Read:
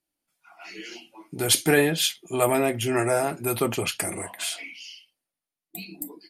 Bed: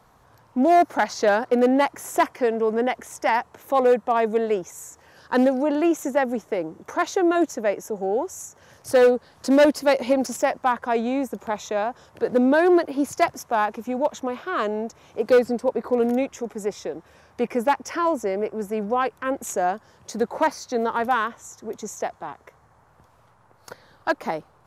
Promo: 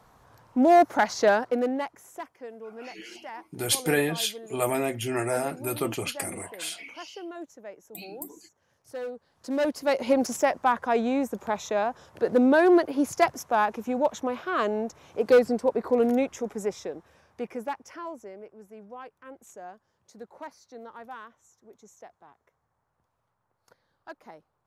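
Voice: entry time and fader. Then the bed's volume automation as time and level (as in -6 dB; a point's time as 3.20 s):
2.20 s, -4.5 dB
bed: 1.28 s -1 dB
2.24 s -19.5 dB
9.05 s -19.5 dB
10.15 s -1.5 dB
16.57 s -1.5 dB
18.53 s -20 dB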